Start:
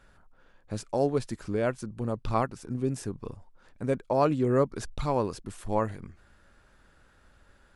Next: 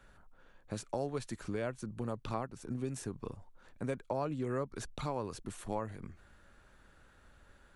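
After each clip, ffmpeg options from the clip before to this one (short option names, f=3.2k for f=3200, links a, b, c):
-filter_complex "[0:a]bandreject=f=5k:w=11,acrossover=split=120|830[a][b][c];[a]acompressor=threshold=-46dB:ratio=4[d];[b]acompressor=threshold=-35dB:ratio=4[e];[c]acompressor=threshold=-41dB:ratio=4[f];[d][e][f]amix=inputs=3:normalize=0,volume=-1.5dB"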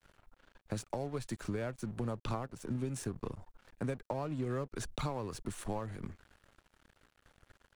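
-filter_complex "[0:a]acrossover=split=130[a][b];[b]acompressor=threshold=-41dB:ratio=3[c];[a][c]amix=inputs=2:normalize=0,aeval=exprs='sgn(val(0))*max(abs(val(0))-0.00126,0)':c=same,volume=5.5dB"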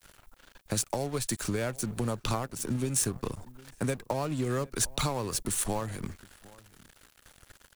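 -filter_complex "[0:a]crystalizer=i=3.5:c=0,asplit=2[a][b];[b]adelay=758,volume=-22dB,highshelf=f=4k:g=-17.1[c];[a][c]amix=inputs=2:normalize=0,volume=5.5dB"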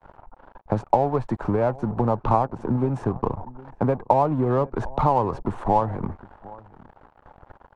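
-filter_complex "[0:a]lowpass=f=880:t=q:w=3.5,asplit=2[a][b];[b]volume=34dB,asoftclip=hard,volume=-34dB,volume=-11.5dB[c];[a][c]amix=inputs=2:normalize=0,volume=6.5dB"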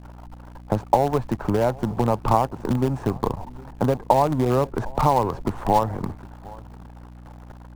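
-filter_complex "[0:a]aeval=exprs='val(0)+0.00891*(sin(2*PI*60*n/s)+sin(2*PI*2*60*n/s)/2+sin(2*PI*3*60*n/s)/3+sin(2*PI*4*60*n/s)/4+sin(2*PI*5*60*n/s)/5)':c=same,asplit=2[a][b];[b]acrusher=bits=4:dc=4:mix=0:aa=0.000001,volume=-9dB[c];[a][c]amix=inputs=2:normalize=0,volume=-1.5dB"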